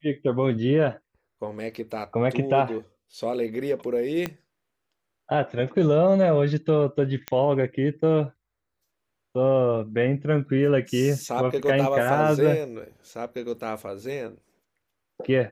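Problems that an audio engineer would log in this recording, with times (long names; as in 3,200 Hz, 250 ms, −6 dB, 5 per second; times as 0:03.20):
0:04.26: click −13 dBFS
0:07.28: click −13 dBFS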